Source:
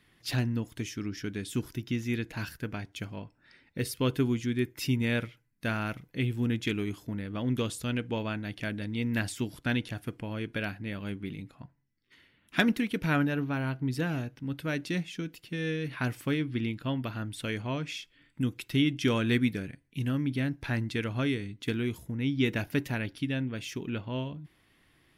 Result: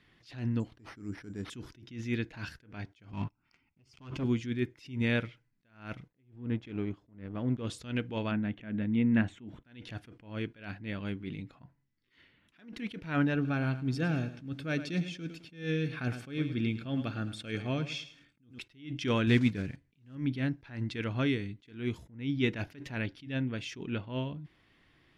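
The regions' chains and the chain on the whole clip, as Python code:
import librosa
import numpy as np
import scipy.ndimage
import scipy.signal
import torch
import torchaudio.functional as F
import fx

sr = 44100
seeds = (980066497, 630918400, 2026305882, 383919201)

y = fx.chain(x, sr, fx.peak_eq(hz=3000.0, db=-13.5, octaves=1.4),
    fx.resample_bad(factor=6, down='none', up='hold'), at=(0.6, 1.5))
y = fx.chain(y, sr, fx.high_shelf(hz=4000.0, db=-6.0),
    fx.fixed_phaser(hz=2600.0, stages=8),
    fx.leveller(passes=3), at=(3.13, 4.24))
y = fx.chain(y, sr, fx.law_mismatch(coded='A'),
    fx.lowpass(hz=1100.0, slope=6), at=(6.08, 7.67))
y = fx.chain(y, sr, fx.moving_average(points=9),
    fx.peak_eq(hz=220.0, db=8.0, octaves=0.32), at=(8.31, 9.65))
y = fx.chain(y, sr, fx.bass_treble(bass_db=3, treble_db=4),
    fx.notch_comb(f0_hz=970.0),
    fx.echo_crushed(ms=107, feedback_pct=35, bits=9, wet_db=-13), at=(13.34, 18.59))
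y = fx.chain(y, sr, fx.block_float(bits=5),
    fx.peak_eq(hz=80.0, db=4.5, octaves=2.6), at=(19.27, 20.17))
y = scipy.signal.sosfilt(scipy.signal.butter(2, 5400.0, 'lowpass', fs=sr, output='sos'), y)
y = fx.attack_slew(y, sr, db_per_s=140.0)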